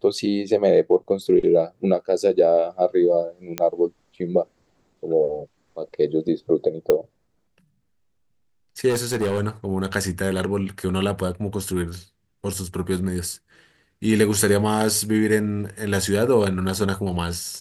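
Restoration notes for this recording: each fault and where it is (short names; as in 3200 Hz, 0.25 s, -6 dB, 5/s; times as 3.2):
3.58 pop -8 dBFS
6.9 pop -7 dBFS
8.89–9.41 clipped -18.5 dBFS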